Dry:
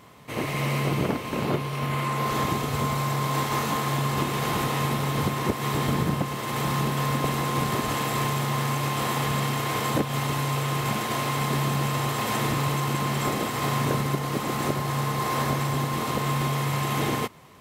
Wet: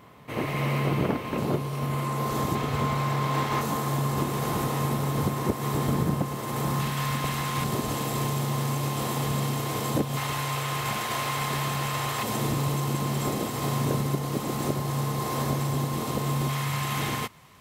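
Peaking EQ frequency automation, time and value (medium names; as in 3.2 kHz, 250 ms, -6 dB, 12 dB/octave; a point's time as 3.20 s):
peaking EQ -7.5 dB 2.1 oct
7.4 kHz
from 1.38 s 2.3 kHz
from 2.55 s 11 kHz
from 3.61 s 2.6 kHz
from 6.80 s 400 Hz
from 7.64 s 1.8 kHz
from 10.17 s 240 Hz
from 12.23 s 1.8 kHz
from 16.49 s 400 Hz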